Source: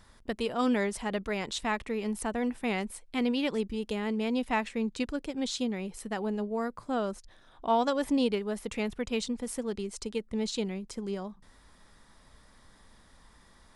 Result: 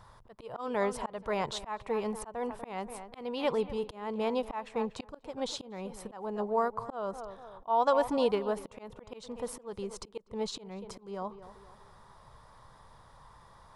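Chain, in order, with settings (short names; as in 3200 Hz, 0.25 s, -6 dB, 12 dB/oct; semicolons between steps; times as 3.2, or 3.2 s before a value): graphic EQ 125/250/500/1000/2000/8000 Hz +12/-9/+5/+12/-4/-4 dB; tape echo 0.242 s, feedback 47%, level -15.5 dB, low-pass 2400 Hz; auto swell 0.304 s; gain -2 dB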